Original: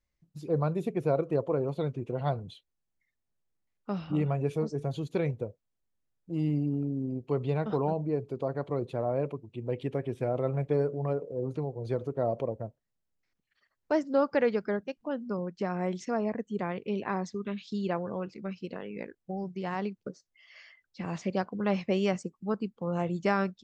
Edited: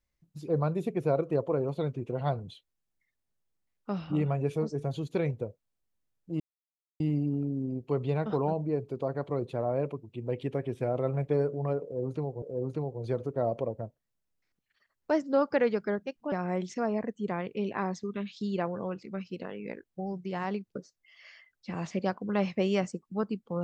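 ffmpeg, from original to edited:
-filter_complex "[0:a]asplit=4[a][b][c][d];[a]atrim=end=6.4,asetpts=PTS-STARTPTS,afade=t=out:st=6.396:d=0.004:c=hsin,apad=pad_dur=0.6[e];[b]atrim=start=6.4:end=11.822,asetpts=PTS-STARTPTS,afade=t=in:d=0.004:c=hsin[f];[c]atrim=start=11.228:end=15.132[g];[d]atrim=start=15.628[h];[e][f]concat=n=2:v=0:a=1[i];[i][g]acrossfade=d=0.004:c1=hsin:c2=hsin[j];[j][h]acrossfade=d=0.004:c1=hsin:c2=hsin"

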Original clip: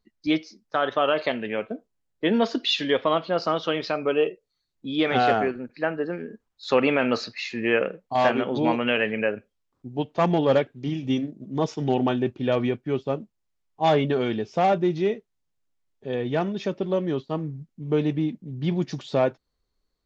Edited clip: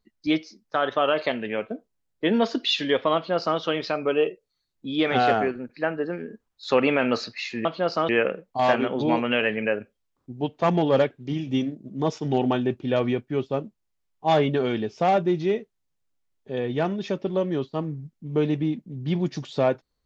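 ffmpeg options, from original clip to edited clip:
-filter_complex "[0:a]asplit=3[a][b][c];[a]atrim=end=7.652[d];[b]atrim=start=3.148:end=3.592[e];[c]atrim=start=7.648[f];[d][e]acrossfade=d=0.004:c1=hsin:c2=hsin[g];[g][f]acrossfade=d=0.004:c1=hsin:c2=hsin"

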